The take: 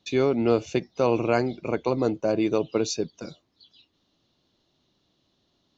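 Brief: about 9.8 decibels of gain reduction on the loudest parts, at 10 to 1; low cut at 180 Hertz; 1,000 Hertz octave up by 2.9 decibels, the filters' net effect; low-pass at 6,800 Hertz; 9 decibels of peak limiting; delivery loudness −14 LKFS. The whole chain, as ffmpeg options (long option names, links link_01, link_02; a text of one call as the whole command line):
ffmpeg -i in.wav -af "highpass=180,lowpass=6800,equalizer=frequency=1000:width_type=o:gain=4,acompressor=threshold=-26dB:ratio=10,volume=21.5dB,alimiter=limit=-2.5dB:level=0:latency=1" out.wav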